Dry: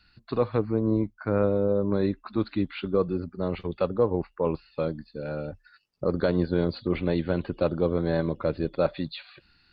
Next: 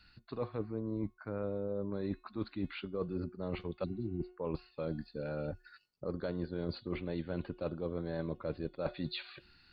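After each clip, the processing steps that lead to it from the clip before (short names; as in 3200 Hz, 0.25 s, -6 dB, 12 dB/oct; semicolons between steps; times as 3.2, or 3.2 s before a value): de-hum 363 Hz, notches 29; spectral repair 3.86–4.27, 390–3500 Hz after; reverse; compressor 6:1, threshold -33 dBFS, peak gain reduction 14.5 dB; reverse; gain -1 dB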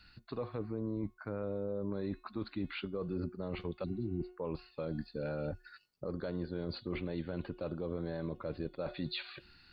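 limiter -30.5 dBFS, peak gain reduction 8.5 dB; gain +2.5 dB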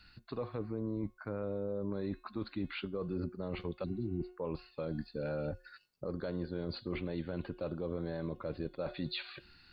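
resonator 530 Hz, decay 0.36 s, mix 40%; gain +4.5 dB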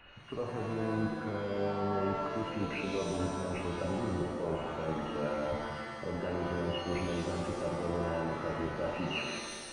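nonlinear frequency compression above 2500 Hz 4:1; band noise 290–2100 Hz -62 dBFS; shimmer reverb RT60 1.5 s, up +7 st, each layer -2 dB, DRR 1.5 dB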